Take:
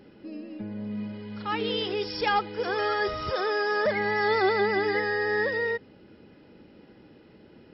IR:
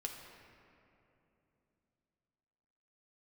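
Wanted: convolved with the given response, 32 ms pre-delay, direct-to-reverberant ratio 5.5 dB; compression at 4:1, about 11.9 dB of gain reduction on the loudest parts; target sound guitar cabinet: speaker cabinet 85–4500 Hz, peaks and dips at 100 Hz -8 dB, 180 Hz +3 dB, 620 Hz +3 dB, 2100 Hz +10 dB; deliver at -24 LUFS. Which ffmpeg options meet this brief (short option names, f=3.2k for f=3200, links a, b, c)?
-filter_complex "[0:a]acompressor=threshold=-35dB:ratio=4,asplit=2[a][b];[1:a]atrim=start_sample=2205,adelay=32[c];[b][c]afir=irnorm=-1:irlink=0,volume=-4.5dB[d];[a][d]amix=inputs=2:normalize=0,highpass=85,equalizer=f=100:t=q:w=4:g=-8,equalizer=f=180:t=q:w=4:g=3,equalizer=f=620:t=q:w=4:g=3,equalizer=f=2.1k:t=q:w=4:g=10,lowpass=f=4.5k:w=0.5412,lowpass=f=4.5k:w=1.3066,volume=9.5dB"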